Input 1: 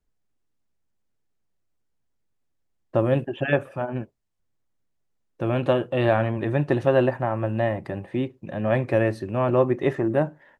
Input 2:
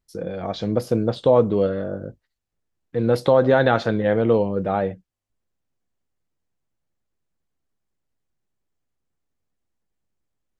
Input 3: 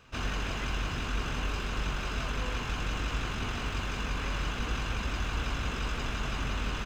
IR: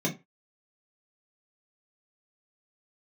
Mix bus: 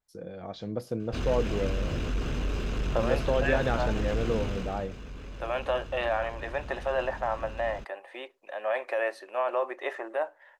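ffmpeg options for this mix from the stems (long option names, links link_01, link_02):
-filter_complex "[0:a]highpass=frequency=580:width=0.5412,highpass=frequency=580:width=1.3066,alimiter=limit=-18.5dB:level=0:latency=1:release=12,adynamicequalizer=threshold=0.00398:dfrequency=3700:dqfactor=0.7:tfrequency=3700:tqfactor=0.7:attack=5:release=100:ratio=0.375:range=2:mode=cutabove:tftype=highshelf,volume=-0.5dB[link_01];[1:a]volume=-11.5dB[link_02];[2:a]asoftclip=type=tanh:threshold=-28dB,lowshelf=frequency=680:width_type=q:width=1.5:gain=7,adelay=1000,volume=-1.5dB,afade=type=out:start_time=4.4:duration=0.48:silence=0.266073[link_03];[link_01][link_02][link_03]amix=inputs=3:normalize=0"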